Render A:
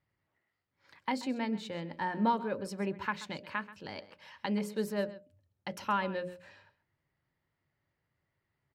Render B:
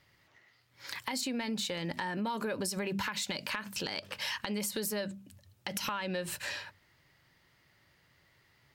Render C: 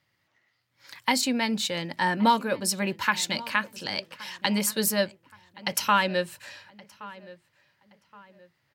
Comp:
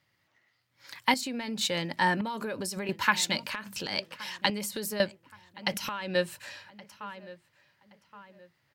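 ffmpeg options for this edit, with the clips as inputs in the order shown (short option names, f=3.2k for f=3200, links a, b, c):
-filter_complex "[1:a]asplit=5[a][b][c][d][e];[2:a]asplit=6[f][g][h][i][j][k];[f]atrim=end=1.142[l];[a]atrim=start=1.138:end=1.612[m];[g]atrim=start=1.608:end=2.212[n];[b]atrim=start=2.208:end=2.892[o];[h]atrim=start=2.888:end=3.44[p];[c]atrim=start=3.34:end=3.96[q];[i]atrim=start=3.86:end=4.502[r];[d]atrim=start=4.498:end=5.002[s];[j]atrim=start=4.998:end=5.742[t];[e]atrim=start=5.738:end=6.152[u];[k]atrim=start=6.148[v];[l][m]acrossfade=d=0.004:c1=hsin:c2=hsin[w];[w][n]acrossfade=d=0.004:c1=hsin:c2=hsin[x];[x][o]acrossfade=d=0.004:c1=hsin:c2=hsin[y];[y][p]acrossfade=d=0.004:c1=hsin:c2=hsin[z];[z][q]acrossfade=d=0.1:c1=tri:c2=tri[aa];[aa][r]acrossfade=d=0.1:c1=tri:c2=tri[ab];[ab][s]acrossfade=d=0.004:c1=hsin:c2=hsin[ac];[ac][t]acrossfade=d=0.004:c1=hsin:c2=hsin[ad];[ad][u]acrossfade=d=0.004:c1=hsin:c2=hsin[ae];[ae][v]acrossfade=d=0.004:c1=hsin:c2=hsin"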